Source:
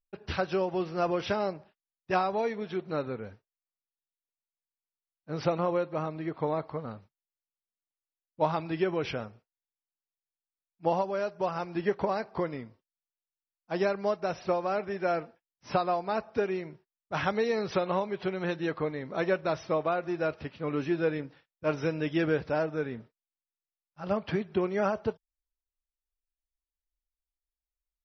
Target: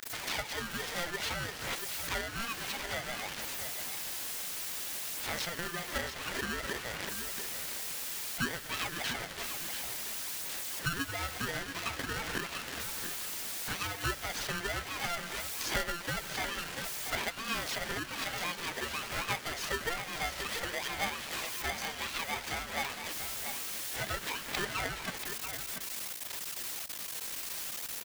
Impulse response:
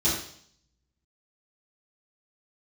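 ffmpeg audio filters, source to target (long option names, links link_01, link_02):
-af "aeval=exprs='val(0)+0.5*0.0168*sgn(val(0))':channel_layout=same,highpass=frequency=870:width=0.5412,highpass=frequency=870:width=1.3066,acompressor=threshold=-43dB:ratio=6,aphaser=in_gain=1:out_gain=1:delay=3.5:decay=0.42:speed=0.57:type=sinusoidal,aecho=1:1:686:0.376,aeval=exprs='val(0)*sgn(sin(2*PI*690*n/s))':channel_layout=same,volume=8.5dB"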